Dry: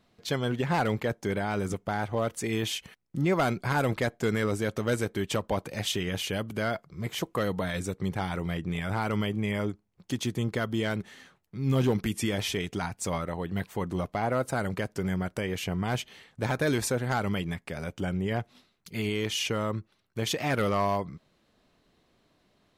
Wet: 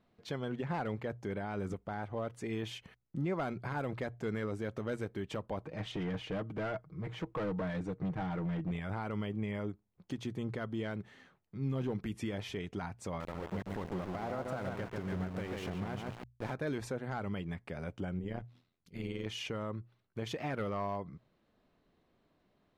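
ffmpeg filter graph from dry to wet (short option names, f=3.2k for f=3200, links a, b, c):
-filter_complex "[0:a]asettb=1/sr,asplit=3[a][b][c];[a]atrim=end=5.654[d];[b]atrim=start=5.65:end=8.71,asetpts=PTS-STARTPTS,afade=t=in:d=0.004:c=qsin,afade=t=out:st=3.056:d=0.004:c=qsin,aemphasis=mode=reproduction:type=75fm,aecho=1:1:6.4:0.54,atrim=end_sample=134946,volume=27dB,asoftclip=hard,volume=-27dB[e];[c]atrim=start=8.706[f];[d][e]acrossfade=d=0.004:c1=hsin:c2=qsin[g];[g][f]acrossfade=d=0.004:c1=qsin:c2=hsin,asettb=1/sr,asplit=3[h][i][j];[h]atrim=end=13.204[k];[i]atrim=start=13.2:end=16.54,asetpts=PTS-STARTPTS,afade=t=in:d=0.004:c=qsin,afade=t=out:st=3.336:d=0.004:c=qsin,asplit=2[l][m];[m]adelay=141,lowpass=f=2.1k:p=1,volume=-3dB,asplit=2[n][o];[o]adelay=141,lowpass=f=2.1k:p=1,volume=0.49,asplit=2[p][q];[q]adelay=141,lowpass=f=2.1k:p=1,volume=0.49,asplit=2[r][s];[s]adelay=141,lowpass=f=2.1k:p=1,volume=0.49,asplit=2[t][u];[u]adelay=141,lowpass=f=2.1k:p=1,volume=0.49,asplit=2[v][w];[w]adelay=141,lowpass=f=2.1k:p=1,volume=0.49[x];[l][n][p][r][t][v][x]amix=inputs=7:normalize=0,atrim=end_sample=147294,aeval=exprs='val(0)*gte(abs(val(0)),0.0266)':c=same[y];[j]atrim=start=16.536[z];[k][y]acrossfade=d=0.004:c1=hsin:c2=qsin[aa];[aa][z]acrossfade=d=0.004:c1=qsin:c2=hsin,asettb=1/sr,asplit=3[ab][ac][ad];[ab]atrim=end=18.194[ae];[ac]atrim=start=18.19:end=19.26,asetpts=PTS-STARTPTS,afade=t=in:d=0.004:c=qsin,afade=t=out:st=1.066:d=0.004:c=qsin,equalizer=f=1k:t=o:w=2.8:g=-4.5,tremolo=f=85:d=0.71[af];[ad]atrim=start=19.256[ag];[ae][af]acrossfade=d=0.004:c1=hsin:c2=qsin[ah];[ah][ag]acrossfade=d=0.004:c1=qsin:c2=hsin,lowpass=f=1.8k:p=1,bandreject=f=60:t=h:w=6,bandreject=f=120:t=h:w=6,alimiter=limit=-23dB:level=0:latency=1:release=254,volume=-4.5dB"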